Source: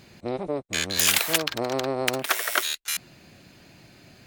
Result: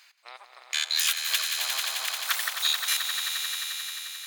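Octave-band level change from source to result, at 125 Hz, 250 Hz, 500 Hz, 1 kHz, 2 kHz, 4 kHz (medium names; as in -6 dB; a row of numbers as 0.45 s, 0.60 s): under -40 dB, under -40 dB, -23.0 dB, -6.5 dB, -2.0 dB, +2.5 dB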